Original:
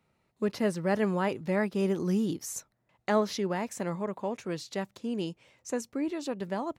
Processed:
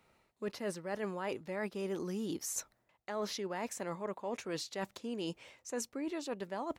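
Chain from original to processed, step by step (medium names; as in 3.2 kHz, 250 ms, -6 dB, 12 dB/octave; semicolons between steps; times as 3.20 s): peaking EQ 140 Hz -9 dB 1.8 oct; reverse; compression 6:1, threshold -42 dBFS, peak gain reduction 18.5 dB; reverse; trim +6 dB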